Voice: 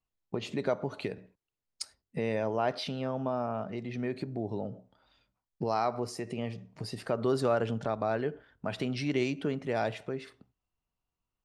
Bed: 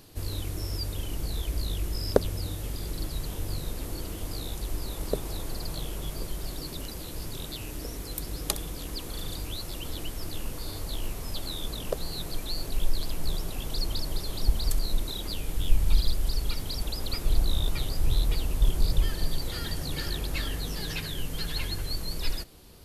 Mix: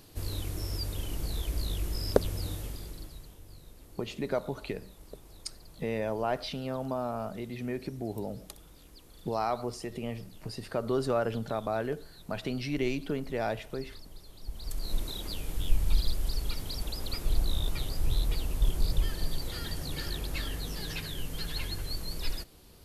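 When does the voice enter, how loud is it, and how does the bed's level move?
3.65 s, -1.0 dB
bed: 2.55 s -2 dB
3.4 s -18 dB
14.41 s -18 dB
14.95 s -3.5 dB

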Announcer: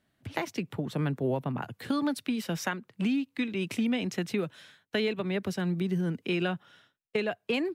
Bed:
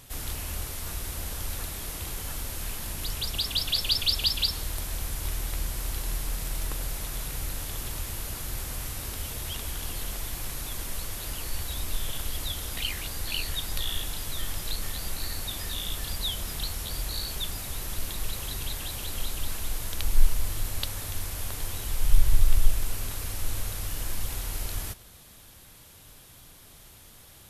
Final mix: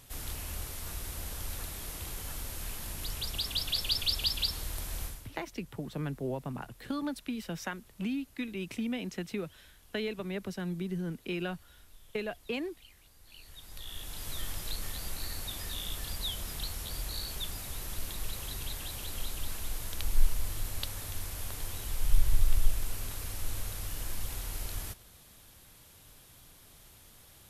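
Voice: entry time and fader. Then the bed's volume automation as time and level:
5.00 s, -6.0 dB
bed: 5.05 s -5 dB
5.36 s -26 dB
13.19 s -26 dB
14.29 s -5 dB

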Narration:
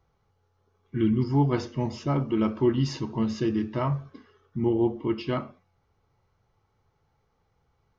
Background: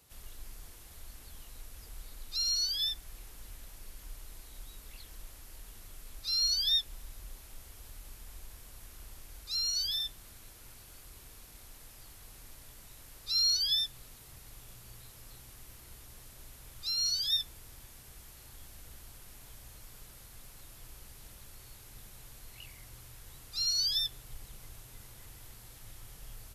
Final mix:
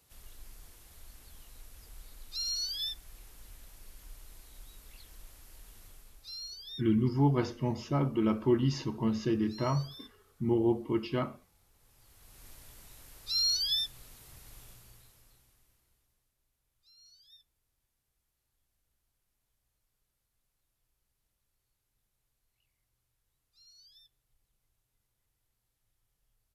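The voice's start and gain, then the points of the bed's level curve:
5.85 s, -3.5 dB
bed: 5.86 s -3.5 dB
6.59 s -17 dB
11.73 s -17 dB
12.47 s -1 dB
14.63 s -1 dB
16.36 s -29.5 dB

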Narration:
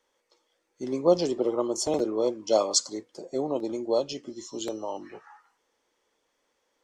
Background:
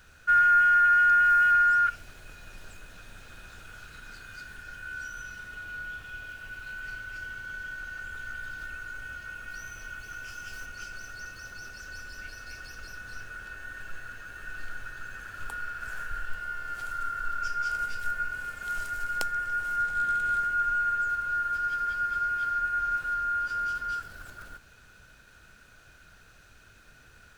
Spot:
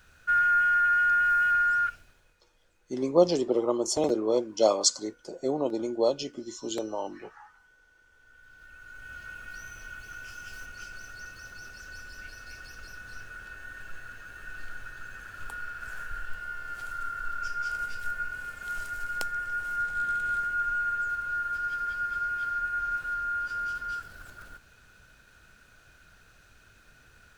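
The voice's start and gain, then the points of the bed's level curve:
2.10 s, +0.5 dB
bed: 1.84 s -3 dB
2.42 s -23.5 dB
8.11 s -23.5 dB
9.19 s -2 dB

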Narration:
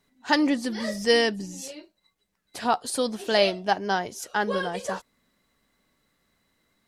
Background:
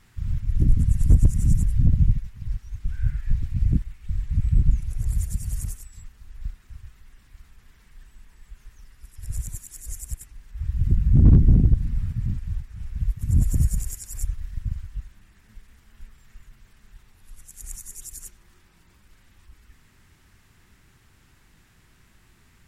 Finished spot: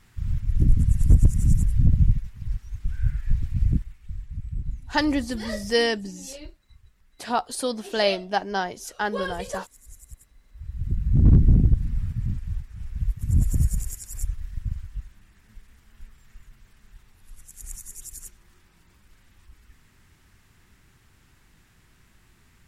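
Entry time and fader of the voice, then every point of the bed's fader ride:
4.65 s, -1.0 dB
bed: 3.64 s 0 dB
4.44 s -12 dB
10.4 s -12 dB
11.36 s -1 dB

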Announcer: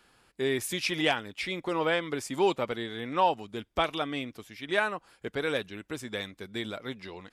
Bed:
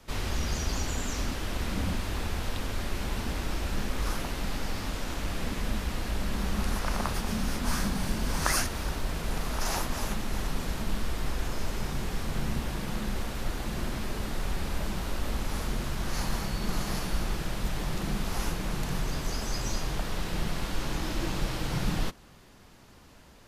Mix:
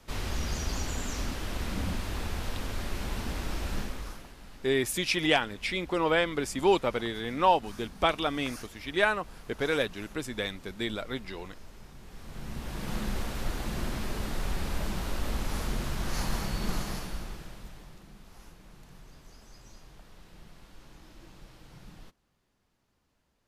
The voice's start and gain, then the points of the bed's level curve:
4.25 s, +2.0 dB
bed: 3.78 s -2 dB
4.34 s -17.5 dB
12 s -17.5 dB
12.93 s -0.5 dB
16.7 s -0.5 dB
18.08 s -21 dB

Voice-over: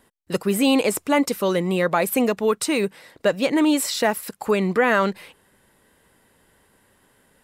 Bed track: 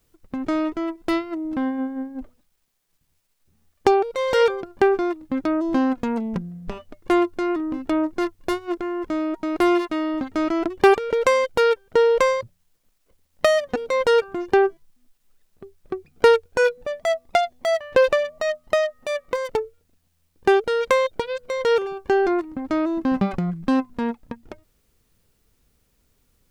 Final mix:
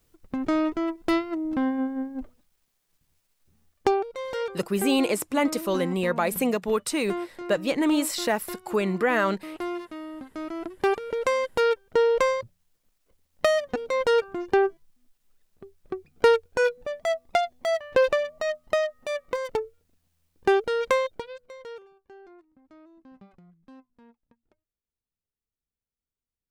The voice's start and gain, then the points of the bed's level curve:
4.25 s, -4.5 dB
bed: 3.58 s -1 dB
4.46 s -13.5 dB
10.2 s -13.5 dB
11.66 s -4 dB
20.95 s -4 dB
22.07 s -30 dB

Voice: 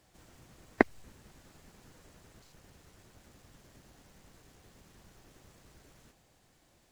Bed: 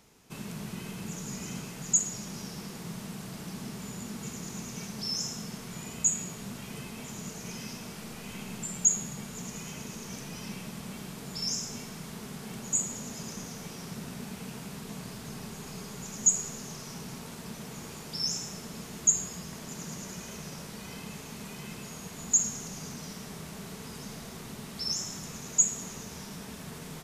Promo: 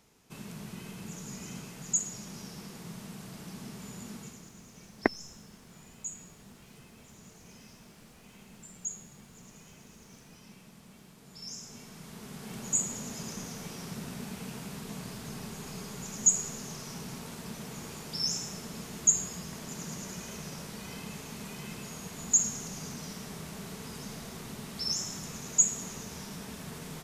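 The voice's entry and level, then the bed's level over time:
4.25 s, -2.5 dB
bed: 4.15 s -4 dB
4.53 s -13.5 dB
11.17 s -13.5 dB
12.66 s 0 dB

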